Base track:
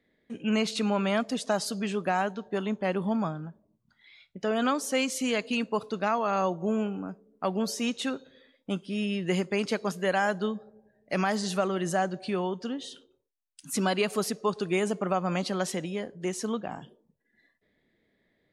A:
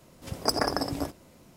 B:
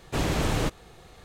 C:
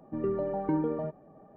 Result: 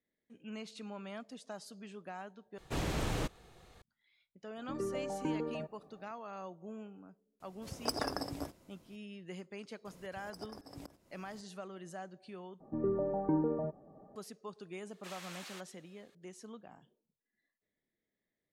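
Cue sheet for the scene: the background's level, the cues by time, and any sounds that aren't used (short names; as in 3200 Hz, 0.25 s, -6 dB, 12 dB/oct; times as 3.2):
base track -18.5 dB
2.58 replace with B -9 dB
4.56 add C -8 dB + high shelf 2000 Hz +10 dB
7.4 add A -9.5 dB
9.85 add A -4.5 dB + auto swell 0.61 s
12.6 replace with C -2.5 dB + LPF 1200 Hz
14.91 add B -14.5 dB + HPF 1400 Hz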